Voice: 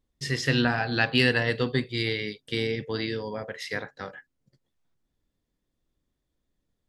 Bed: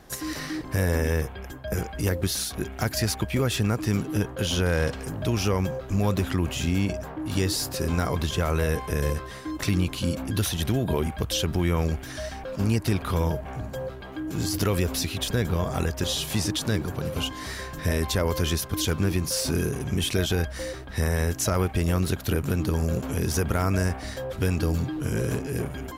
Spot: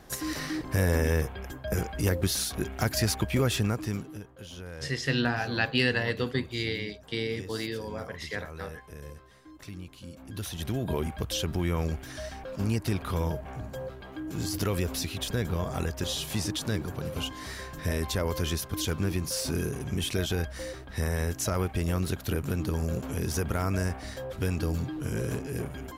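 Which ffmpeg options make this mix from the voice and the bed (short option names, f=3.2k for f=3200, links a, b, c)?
-filter_complex "[0:a]adelay=4600,volume=-3.5dB[a];[1:a]volume=12.5dB,afade=t=out:st=3.47:d=0.74:silence=0.141254,afade=t=in:st=10.15:d=0.77:silence=0.211349[b];[a][b]amix=inputs=2:normalize=0"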